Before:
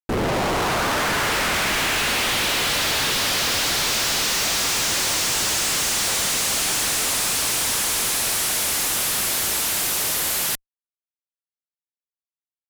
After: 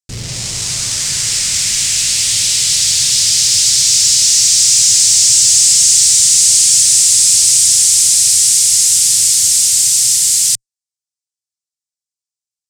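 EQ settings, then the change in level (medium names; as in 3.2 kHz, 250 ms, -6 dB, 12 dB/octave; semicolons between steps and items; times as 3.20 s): FFT filter 110 Hz 0 dB, 270 Hz -16 dB, 790 Hz -18 dB, 1.6 kHz -15 dB, 5.1 kHz +10 dB, 13 kHz -3 dB; dynamic bell 8.4 kHz, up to +5 dB, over -33 dBFS, Q 1.1; graphic EQ 125/250/500/2000/8000 Hz +9/+4/+4/+7/+12 dB; -3.0 dB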